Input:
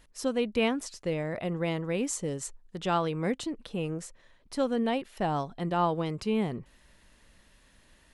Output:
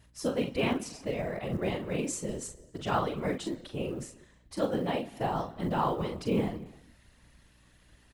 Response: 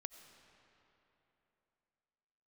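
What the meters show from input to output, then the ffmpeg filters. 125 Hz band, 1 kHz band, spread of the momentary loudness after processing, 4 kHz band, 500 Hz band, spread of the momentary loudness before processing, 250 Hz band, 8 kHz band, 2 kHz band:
-1.0 dB, -1.5 dB, 10 LU, -2.0 dB, -1.5 dB, 8 LU, -2.0 dB, -2.0 dB, -2.0 dB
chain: -filter_complex "[0:a]aecho=1:1:41|59:0.501|0.15,asplit=2[a][b];[1:a]atrim=start_sample=2205,afade=t=out:st=0.4:d=0.01,atrim=end_sample=18081[c];[b][c]afir=irnorm=-1:irlink=0,volume=1.5dB[d];[a][d]amix=inputs=2:normalize=0,afftfilt=real='hypot(re,im)*cos(2*PI*random(0))':imag='hypot(re,im)*sin(2*PI*random(1))':win_size=512:overlap=0.75,aeval=exprs='val(0)+0.000794*(sin(2*PI*60*n/s)+sin(2*PI*2*60*n/s)/2+sin(2*PI*3*60*n/s)/3+sin(2*PI*4*60*n/s)/4+sin(2*PI*5*60*n/s)/5)':c=same,acrusher=bits=9:mode=log:mix=0:aa=0.000001,volume=-1.5dB"

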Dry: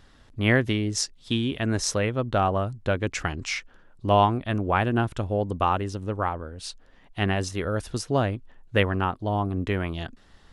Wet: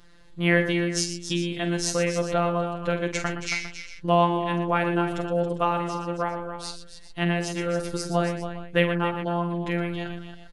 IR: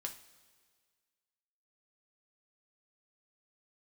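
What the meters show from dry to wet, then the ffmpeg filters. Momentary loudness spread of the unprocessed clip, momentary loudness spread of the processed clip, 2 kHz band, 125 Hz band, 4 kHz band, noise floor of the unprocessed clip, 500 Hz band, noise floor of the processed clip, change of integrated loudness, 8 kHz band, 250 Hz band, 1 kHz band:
10 LU, 11 LU, +1.0 dB, -2.5 dB, 0.0 dB, -55 dBFS, +1.5 dB, -44 dBFS, 0.0 dB, +0.5 dB, +1.0 dB, -1.0 dB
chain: -af "afftfilt=real='hypot(re,im)*cos(PI*b)':imag='0':win_size=1024:overlap=0.75,aecho=1:1:46|118|275|402:0.376|0.299|0.299|0.158,volume=3dB"

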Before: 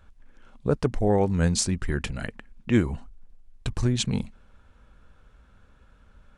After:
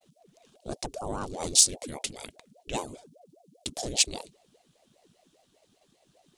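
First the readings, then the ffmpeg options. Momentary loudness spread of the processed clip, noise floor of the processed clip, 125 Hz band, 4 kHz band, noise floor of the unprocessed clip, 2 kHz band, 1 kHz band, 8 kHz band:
22 LU, -69 dBFS, -18.0 dB, +5.0 dB, -58 dBFS, -6.0 dB, -3.5 dB, +8.0 dB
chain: -af "agate=range=-33dB:threshold=-54dB:ratio=3:detection=peak,equalizer=f=2.3k:t=o:w=0.37:g=-5.5,aexciter=amount=7.9:drive=6.5:freq=2.7k,aeval=exprs='val(0)*sin(2*PI*440*n/s+440*0.65/5*sin(2*PI*5*n/s))':c=same,volume=-10dB"

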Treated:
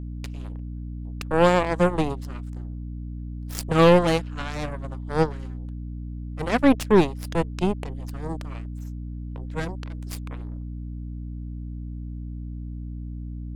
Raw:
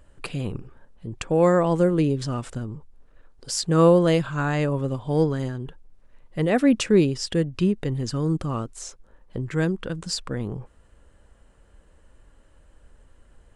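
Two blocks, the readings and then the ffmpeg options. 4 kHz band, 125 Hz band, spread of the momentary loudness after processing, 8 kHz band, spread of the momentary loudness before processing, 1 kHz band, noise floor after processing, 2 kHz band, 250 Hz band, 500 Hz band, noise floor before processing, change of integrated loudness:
-2.5 dB, -2.5 dB, 17 LU, -7.5 dB, 18 LU, +3.5 dB, -34 dBFS, +2.0 dB, -2.0 dB, -1.0 dB, -57 dBFS, -3.0 dB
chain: -af "aeval=exprs='0.473*(cos(1*acos(clip(val(0)/0.473,-1,1)))-cos(1*PI/2))+0.00376*(cos(5*acos(clip(val(0)/0.473,-1,1)))-cos(5*PI/2))+0.0473*(cos(6*acos(clip(val(0)/0.473,-1,1)))-cos(6*PI/2))+0.075*(cos(7*acos(clip(val(0)/0.473,-1,1)))-cos(7*PI/2))':c=same,aeval=exprs='val(0)+0.0251*(sin(2*PI*60*n/s)+sin(2*PI*2*60*n/s)/2+sin(2*PI*3*60*n/s)/3+sin(2*PI*4*60*n/s)/4+sin(2*PI*5*60*n/s)/5)':c=same"

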